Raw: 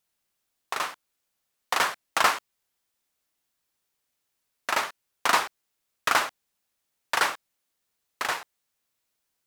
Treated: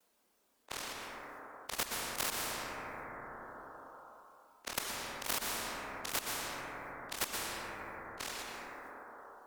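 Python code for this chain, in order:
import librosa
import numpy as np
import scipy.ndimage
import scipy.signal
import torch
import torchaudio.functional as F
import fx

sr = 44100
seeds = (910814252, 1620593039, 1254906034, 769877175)

y = fx.frame_reverse(x, sr, frame_ms=60.0)
y = fx.graphic_eq_10(y, sr, hz=(125, 250, 500, 1000), db=(-12, 11, 9, 5))
y = fx.cheby_harmonics(y, sr, harmonics=(3, 4, 5, 7), levels_db=(-27, -27, -23, -22), full_scale_db=-5.0)
y = fx.level_steps(y, sr, step_db=22)
y = fx.transient(y, sr, attack_db=0, sustain_db=8)
y = fx.dereverb_blind(y, sr, rt60_s=0.84)
y = fx.rev_plate(y, sr, seeds[0], rt60_s=2.5, hf_ratio=0.3, predelay_ms=110, drr_db=2.5)
y = fx.spectral_comp(y, sr, ratio=4.0)
y = F.gain(torch.from_numpy(y), -6.5).numpy()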